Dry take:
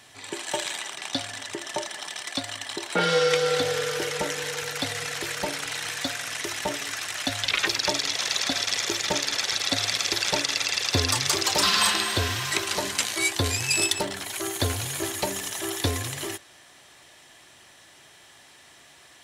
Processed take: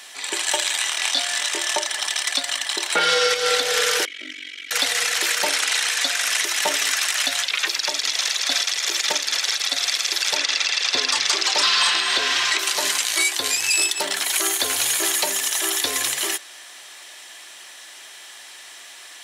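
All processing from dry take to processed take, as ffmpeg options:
-filter_complex "[0:a]asettb=1/sr,asplit=3[a][b][c];[a]atrim=end=0.784[d];[b]atrim=start=0.78:end=1.74,asetpts=PTS-STARTPTS,afade=t=in:d=0.004:c=qsin,afade=t=out:st=0.956:d=0.004:c=qsin,lowshelf=f=240:g=-8,asplit=2[e][f];[f]adelay=24,volume=-2dB[g];[e][g]amix=inputs=2:normalize=0,atrim=end_sample=42336[h];[c]atrim=start=1.736[i];[d][h]acrossfade=d=0.004:c1=hsin:c2=qsin[j];[j][i]acrossfade=d=0.004:c1=qsin:c2=hsin,asettb=1/sr,asplit=3[k][l][m];[k]atrim=end=4.054[n];[l]atrim=start=4.05:end=4.71,asetpts=PTS-STARTPTS,afade=t=in:d=0.004:c=qsin,afade=t=out:st=0.656:d=0.004:c=qsin,asplit=3[o][p][q];[o]bandpass=f=270:t=q:w=8,volume=0dB[r];[p]bandpass=f=2.29k:t=q:w=8,volume=-6dB[s];[q]bandpass=f=3.01k:t=q:w=8,volume=-9dB[t];[r][s][t]amix=inputs=3:normalize=0,aecho=1:1:3.1:0.85,atrim=end_sample=29106,aeval=exprs='val(0)*sin(2*PI*23*n/s)':c=same[u];[m]atrim=start=4.706[v];[n][u]acrossfade=d=0.004:c1=hsin:c2=qsin[w];[w][v]acrossfade=d=0.004:c1=qsin:c2=hsin,asettb=1/sr,asplit=3[x][y][z];[x]atrim=end=5.494[aa];[y]atrim=start=5.49:end=6.23,asetpts=PTS-STARTPTS,afade=t=in:d=0.004:c=qsin,afade=t=out:st=0.736:d=0.004:c=qsin,lowpass=12k,lowshelf=f=140:g=-8.5[ab];[z]atrim=start=6.226[ac];[aa][ab]acrossfade=d=0.004:c1=hsin:c2=qsin[ad];[ad][ac]acrossfade=d=0.004:c1=qsin:c2=hsin,asettb=1/sr,asplit=3[ae][af][ag];[ae]atrim=end=10.374[ah];[af]atrim=start=10.37:end=12.59,asetpts=PTS-STARTPTS,afade=t=in:d=0.004:c=qsin,afade=t=out:st=2.216:d=0.004:c=qsin,asoftclip=type=hard:threshold=-14.5dB,highpass=130,lowpass=5.8k[ai];[ag]atrim=start=12.586[aj];[ah][ai]acrossfade=d=0.004:c1=hsin:c2=qsin[ak];[ak][aj]acrossfade=d=0.004:c1=qsin:c2=hsin,highpass=330,tiltshelf=f=970:g=-5.5,alimiter=limit=-15.5dB:level=0:latency=1:release=193,volume=7dB"

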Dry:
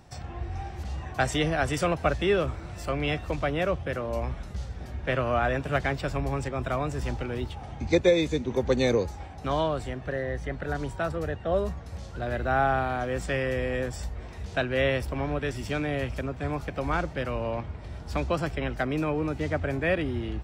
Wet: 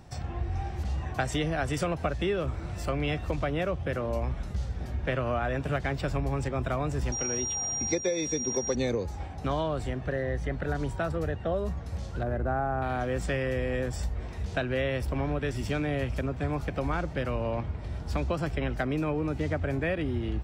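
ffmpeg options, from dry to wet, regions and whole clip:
-filter_complex "[0:a]asettb=1/sr,asplit=3[a][b][c];[a]atrim=end=7.124[d];[b]atrim=start=7.12:end=8.75,asetpts=PTS-STARTPTS,afade=t=in:d=0.004:c=qsin,afade=t=out:st=1.626:d=0.004:c=qsin,highpass=f=260:p=1,aeval=exprs='val(0)+0.0355*sin(2*PI*5700*n/s)':c=same[e];[c]atrim=start=8.746[f];[d][e]acrossfade=d=0.004:c1=hsin:c2=qsin[g];[g][f]acrossfade=d=0.004:c1=qsin:c2=hsin,asettb=1/sr,asplit=3[h][i][j];[h]atrim=end=12.234[k];[i]atrim=start=12.23:end=12.82,asetpts=PTS-STARTPTS,afade=t=in:d=0.004:c=qsin,afade=t=out:st=0.586:d=0.004:c=qsin,lowpass=1.3k,aeval=exprs='sgn(val(0))*max(abs(val(0))-0.001,0)':c=same[l];[j]atrim=start=12.816[m];[k][l]acrossfade=d=0.004:c1=hsin:c2=qsin[n];[n][m]acrossfade=d=0.004:c1=qsin:c2=hsin,lowshelf=f=360:g=4,acompressor=threshold=-25dB:ratio=6"

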